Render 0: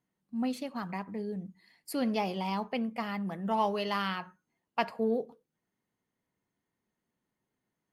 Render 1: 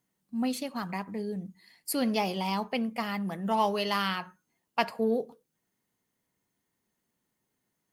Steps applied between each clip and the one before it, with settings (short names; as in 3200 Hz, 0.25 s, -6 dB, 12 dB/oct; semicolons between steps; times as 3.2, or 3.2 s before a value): high shelf 4400 Hz +9.5 dB; gain +2 dB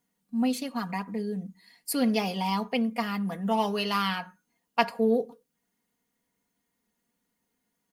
comb 4.2 ms, depth 60%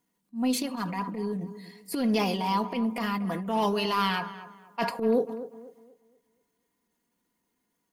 transient shaper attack -11 dB, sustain +6 dB; small resonant body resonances 340/1000 Hz, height 8 dB; tape echo 0.242 s, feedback 37%, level -12 dB, low-pass 1600 Hz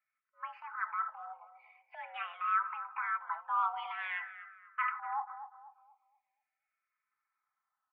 mistuned SSB +330 Hz 590–2000 Hz; endless phaser -0.45 Hz